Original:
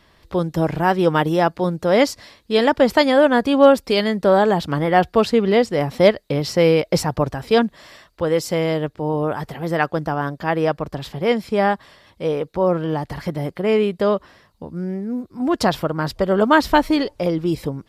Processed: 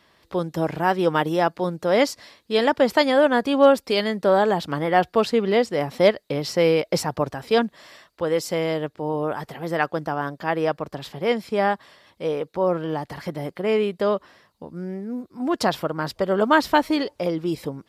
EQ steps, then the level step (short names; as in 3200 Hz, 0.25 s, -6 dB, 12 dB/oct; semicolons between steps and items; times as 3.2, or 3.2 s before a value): HPF 210 Hz 6 dB/oct; -2.5 dB